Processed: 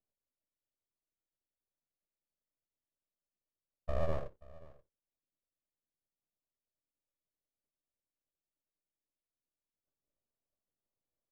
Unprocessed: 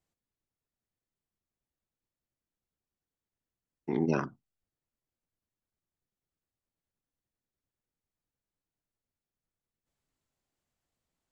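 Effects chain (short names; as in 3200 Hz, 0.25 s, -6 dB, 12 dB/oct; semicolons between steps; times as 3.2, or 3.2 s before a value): vocal tract filter u; outdoor echo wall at 91 m, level -21 dB; full-wave rectifier; gain +4.5 dB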